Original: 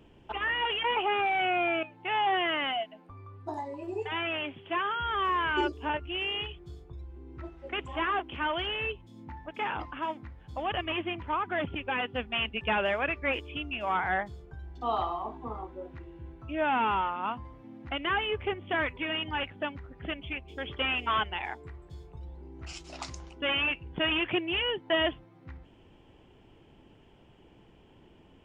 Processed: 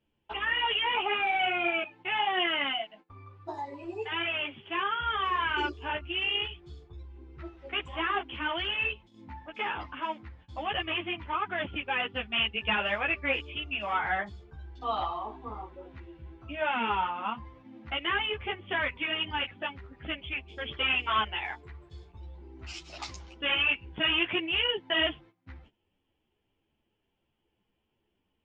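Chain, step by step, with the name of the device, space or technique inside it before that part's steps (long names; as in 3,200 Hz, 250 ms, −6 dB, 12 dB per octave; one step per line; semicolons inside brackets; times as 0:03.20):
string-machine ensemble chorus (string-ensemble chorus; low-pass filter 4,300 Hz 12 dB per octave)
noise gate −54 dBFS, range −19 dB
high-shelf EQ 2,300 Hz +11 dB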